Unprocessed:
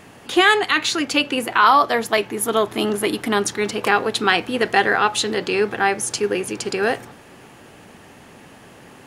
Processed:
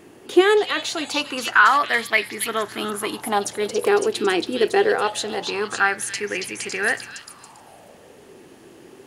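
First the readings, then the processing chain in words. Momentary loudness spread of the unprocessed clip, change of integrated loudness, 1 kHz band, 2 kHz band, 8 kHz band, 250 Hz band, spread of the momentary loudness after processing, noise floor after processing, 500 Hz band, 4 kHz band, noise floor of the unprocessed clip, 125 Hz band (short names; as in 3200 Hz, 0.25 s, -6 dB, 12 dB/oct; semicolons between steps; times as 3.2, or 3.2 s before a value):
8 LU, -2.0 dB, -3.5 dB, -1.0 dB, -2.5 dB, -2.5 dB, 11 LU, -48 dBFS, -0.5 dB, -4.0 dB, -45 dBFS, -7.5 dB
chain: high shelf 6000 Hz +5.5 dB; delay with a stepping band-pass 0.278 s, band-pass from 4100 Hz, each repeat 0.7 oct, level -1 dB; LFO bell 0.23 Hz 350–2100 Hz +15 dB; gain -8 dB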